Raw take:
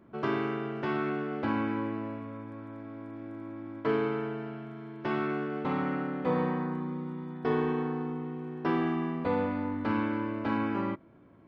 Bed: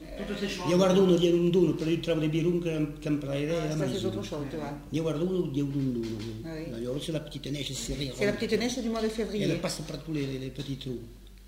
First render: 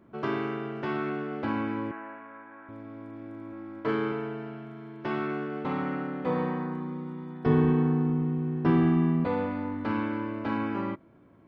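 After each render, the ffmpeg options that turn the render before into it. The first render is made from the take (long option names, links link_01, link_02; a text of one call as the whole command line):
ffmpeg -i in.wav -filter_complex "[0:a]asettb=1/sr,asplit=3[link_01][link_02][link_03];[link_01]atrim=end=1.914[link_04];[link_02]atrim=start=1.91:end=2.69,asetpts=PTS-STARTPTS,afade=type=in:duration=0.004:curve=qsin,afade=type=out:start_time=0.776:duration=0.004:curve=qsin,highpass=460,equalizer=frequency=490:width_type=q:width=4:gain=-9,equalizer=frequency=820:width_type=q:width=4:gain=4,equalizer=frequency=1600:width_type=q:width=4:gain=10,lowpass=frequency=2700:width=0.5412,lowpass=frequency=2700:width=1.3066[link_05];[link_03]atrim=start=2.686[link_06];[link_04][link_05]acrossfade=duration=0.004:curve1=hsin:curve2=qsin[link_07];[link_07][link_06]acrossfade=duration=0.004:curve1=qsin:curve2=hsin,asettb=1/sr,asplit=3[link_08][link_09][link_10];[link_08]atrim=end=3.494[link_11];[link_09]atrim=start=3.49:end=4.12,asetpts=PTS-STARTPTS,afade=type=in:duration=0.004:curve=qsin,afade=type=out:start_time=0.626:duration=0.004:curve=qsin,asplit=2[link_12][link_13];[link_13]adelay=31,volume=-5dB[link_14];[link_12][link_14]amix=inputs=2:normalize=0,atrim=end_sample=27783[link_15];[link_10]atrim=start=4.116[link_16];[link_11][link_15]acrossfade=duration=0.004:curve1=hsin:curve2=qsin[link_17];[link_17][link_16]acrossfade=duration=0.004:curve1=qsin:curve2=hsin,asettb=1/sr,asplit=3[link_18][link_19][link_20];[link_18]atrim=end=7.464[link_21];[link_19]atrim=start=7.46:end=9.25,asetpts=PTS-STARTPTS,afade=type=in:duration=0.004:curve=qsin,afade=type=out:start_time=1.786:duration=0.004:curve=qsin,bass=frequency=250:gain=15,treble=frequency=4000:gain=-3[link_22];[link_20]atrim=start=9.246[link_23];[link_21][link_22]acrossfade=duration=0.004:curve1=hsin:curve2=qsin[link_24];[link_24][link_23]acrossfade=duration=0.004:curve1=qsin:curve2=hsin" out.wav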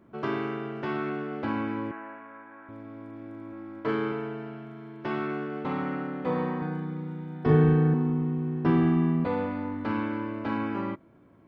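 ffmpeg -i in.wav -filter_complex "[0:a]asettb=1/sr,asplit=3[link_01][link_02][link_03];[link_01]atrim=end=6.584[link_04];[link_02]atrim=start=6.58:end=7.94,asetpts=PTS-STARTPTS,afade=type=in:duration=0.004:curve=qsin,afade=type=out:start_time=1.356:duration=0.004:curve=qsin,asplit=2[link_05][link_06];[link_06]adelay=39,volume=-2dB[link_07];[link_05][link_07]amix=inputs=2:normalize=0,atrim=end_sample=59976[link_08];[link_03]atrim=start=7.936[link_09];[link_04][link_08]acrossfade=duration=0.004:curve1=hsin:curve2=qsin[link_10];[link_10][link_09]acrossfade=duration=0.004:curve1=qsin:curve2=hsin" out.wav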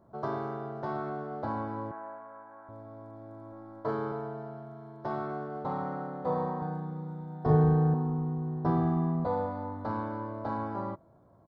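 ffmpeg -i in.wav -af "firequalizer=gain_entry='entry(120,0);entry(270,-10);entry(660,5);entry(2600,-25);entry(3900,-5)':delay=0.05:min_phase=1" out.wav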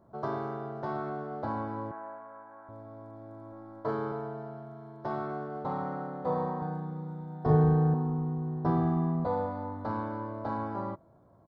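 ffmpeg -i in.wav -af anull out.wav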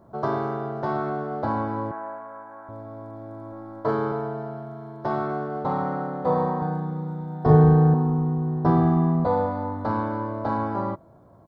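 ffmpeg -i in.wav -af "volume=8dB" out.wav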